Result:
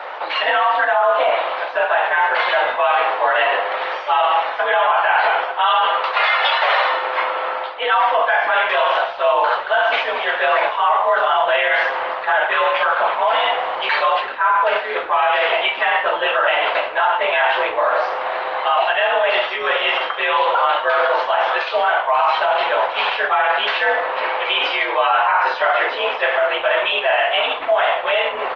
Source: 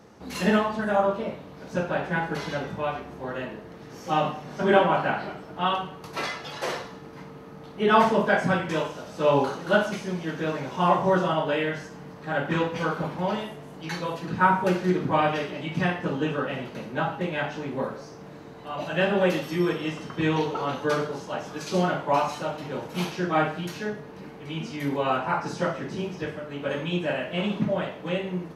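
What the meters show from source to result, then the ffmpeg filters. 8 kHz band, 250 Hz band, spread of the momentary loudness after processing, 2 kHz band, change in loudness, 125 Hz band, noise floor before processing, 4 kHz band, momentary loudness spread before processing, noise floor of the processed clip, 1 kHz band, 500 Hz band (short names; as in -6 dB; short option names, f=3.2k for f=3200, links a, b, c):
under -10 dB, -15.0 dB, 4 LU, +13.5 dB, +9.5 dB, under -30 dB, -44 dBFS, +14.0 dB, 14 LU, -26 dBFS, +12.0 dB, +7.5 dB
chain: -filter_complex "[0:a]areverse,acompressor=threshold=-33dB:ratio=16,areverse,highpass=f=590:t=q:w=0.5412,highpass=f=590:t=q:w=1.307,lowpass=f=3.5k:t=q:w=0.5176,lowpass=f=3.5k:t=q:w=0.7071,lowpass=f=3.5k:t=q:w=1.932,afreqshift=65,asplit=2[a][b];[b]adelay=128.3,volume=-28dB,highshelf=f=4k:g=-2.89[c];[a][c]amix=inputs=2:normalize=0,alimiter=level_in=35dB:limit=-1dB:release=50:level=0:latency=1,volume=-6.5dB" -ar 48000 -c:a libopus -b:a 24k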